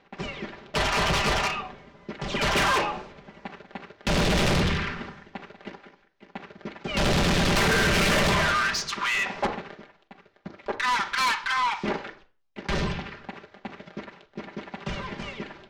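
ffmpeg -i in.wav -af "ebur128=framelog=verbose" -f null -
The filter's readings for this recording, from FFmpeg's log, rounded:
Integrated loudness:
  I:         -24.9 LUFS
  Threshold: -37.0 LUFS
Loudness range:
  LRA:         8.2 LU
  Threshold: -46.6 LUFS
  LRA low:   -31.5 LUFS
  LRA high:  -23.2 LUFS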